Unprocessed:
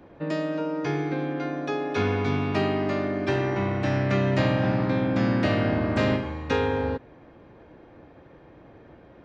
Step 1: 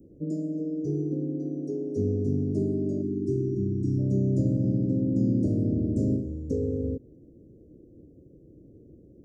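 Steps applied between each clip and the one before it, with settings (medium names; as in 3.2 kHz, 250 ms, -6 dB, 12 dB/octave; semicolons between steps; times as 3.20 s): time-frequency box 3.02–3.99 s, 440–1300 Hz -29 dB; inverse Chebyshev band-stop 890–3600 Hz, stop band 50 dB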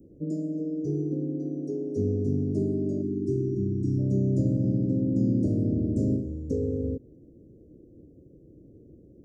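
no audible change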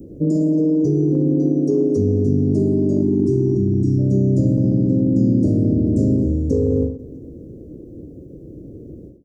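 in parallel at -2 dB: compressor with a negative ratio -31 dBFS, ratio -0.5; on the sum: feedback delay 218 ms, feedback 56%, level -23.5 dB; endings held to a fixed fall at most 110 dB/s; trim +7.5 dB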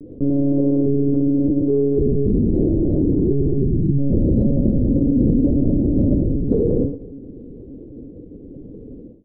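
monotone LPC vocoder at 8 kHz 140 Hz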